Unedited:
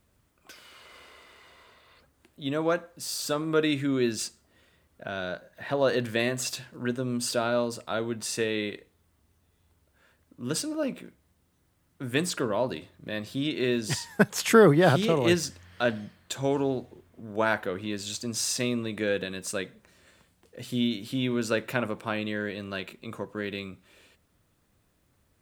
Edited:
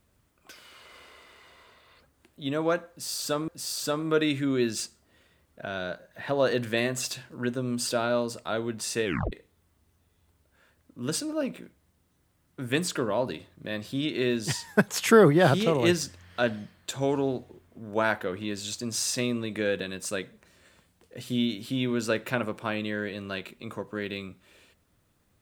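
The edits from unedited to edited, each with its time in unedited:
0:02.90–0:03.48: repeat, 2 plays
0:08.47: tape stop 0.27 s

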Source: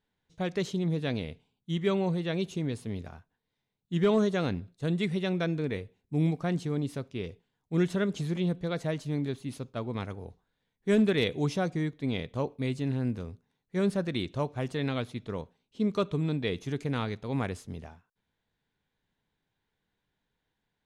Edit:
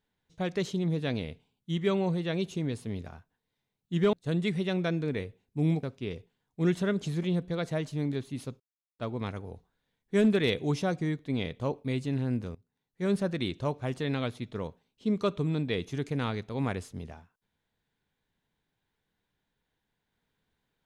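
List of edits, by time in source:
0:04.13–0:04.69: remove
0:06.39–0:06.96: remove
0:09.73: splice in silence 0.39 s
0:13.29–0:13.88: fade in linear, from −21.5 dB

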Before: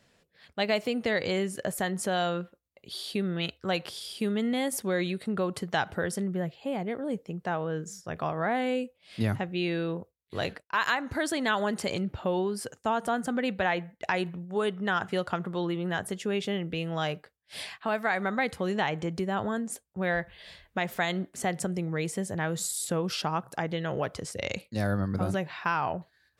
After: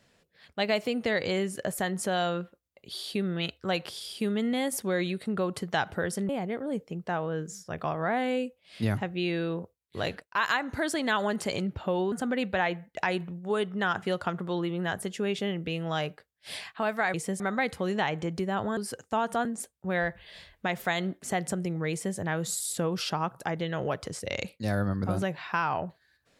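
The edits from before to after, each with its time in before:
0:06.29–0:06.67: remove
0:12.50–0:13.18: move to 0:19.57
0:22.03–0:22.29: duplicate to 0:18.20

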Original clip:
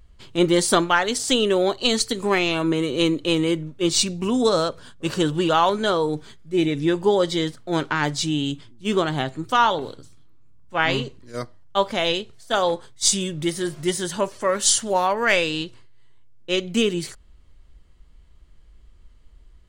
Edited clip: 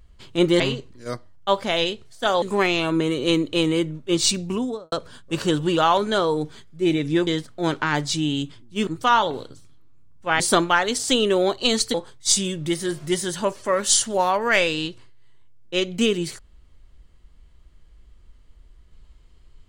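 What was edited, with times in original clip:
0:00.60–0:02.14: swap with 0:10.88–0:12.70
0:04.14–0:04.64: fade out and dull
0:06.99–0:07.36: remove
0:08.96–0:09.35: remove

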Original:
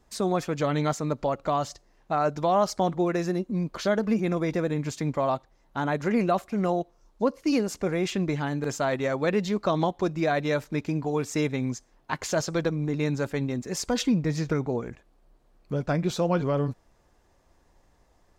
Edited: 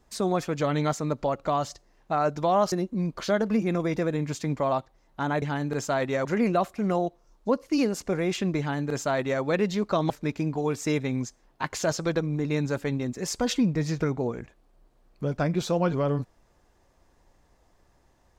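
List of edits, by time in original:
0:02.72–0:03.29: remove
0:08.33–0:09.16: duplicate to 0:05.99
0:09.84–0:10.59: remove

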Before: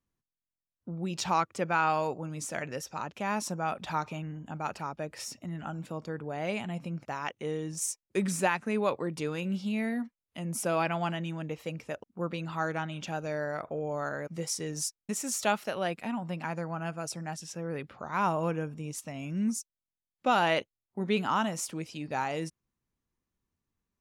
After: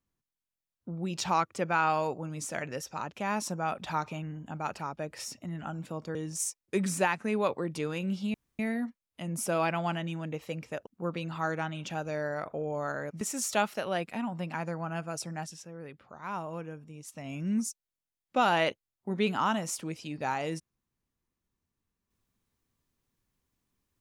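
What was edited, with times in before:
0:06.15–0:07.57: remove
0:09.76: splice in room tone 0.25 s
0:14.38–0:15.11: remove
0:17.32–0:19.20: duck −8.5 dB, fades 0.26 s

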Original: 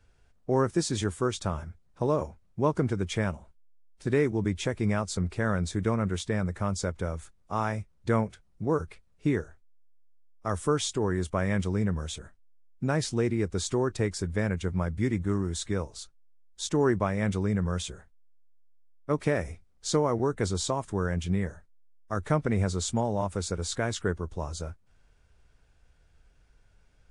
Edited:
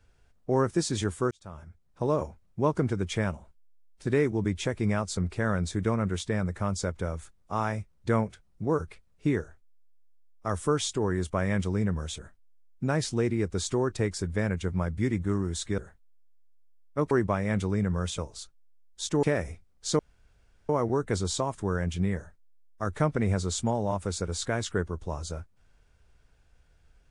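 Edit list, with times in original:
0:01.31–0:02.13: fade in
0:15.78–0:16.83: swap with 0:17.90–0:19.23
0:19.99: splice in room tone 0.70 s

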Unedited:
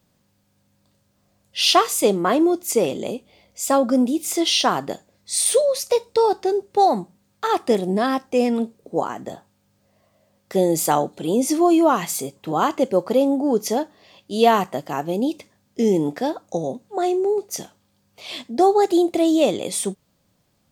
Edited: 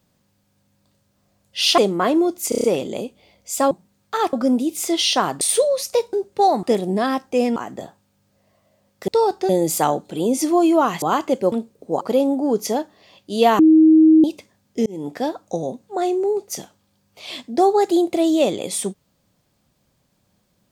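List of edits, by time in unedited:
0:01.78–0:02.03: remove
0:02.74: stutter 0.03 s, 6 plays
0:04.89–0:05.38: remove
0:06.10–0:06.51: move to 0:10.57
0:07.01–0:07.63: move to 0:03.81
0:08.56–0:09.05: move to 0:13.02
0:12.10–0:12.52: remove
0:14.60–0:15.25: beep over 316 Hz −7.5 dBFS
0:15.87–0:16.23: fade in

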